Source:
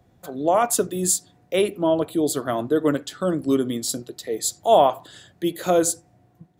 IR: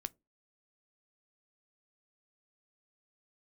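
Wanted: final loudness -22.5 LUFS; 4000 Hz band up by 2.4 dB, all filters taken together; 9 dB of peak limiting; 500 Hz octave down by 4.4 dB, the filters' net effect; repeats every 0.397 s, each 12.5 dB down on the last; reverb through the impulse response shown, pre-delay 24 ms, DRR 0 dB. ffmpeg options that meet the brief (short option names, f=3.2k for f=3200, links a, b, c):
-filter_complex "[0:a]equalizer=f=500:t=o:g=-6,equalizer=f=4k:t=o:g=3,alimiter=limit=-15.5dB:level=0:latency=1,aecho=1:1:397|794|1191:0.237|0.0569|0.0137,asplit=2[a][b];[1:a]atrim=start_sample=2205,adelay=24[c];[b][c]afir=irnorm=-1:irlink=0,volume=2.5dB[d];[a][d]amix=inputs=2:normalize=0,volume=1.5dB"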